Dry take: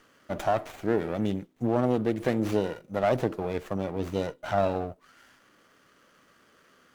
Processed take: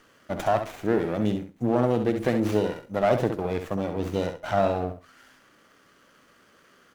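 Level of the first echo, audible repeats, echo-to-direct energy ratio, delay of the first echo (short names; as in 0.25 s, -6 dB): -8.0 dB, 2, -8.0 dB, 66 ms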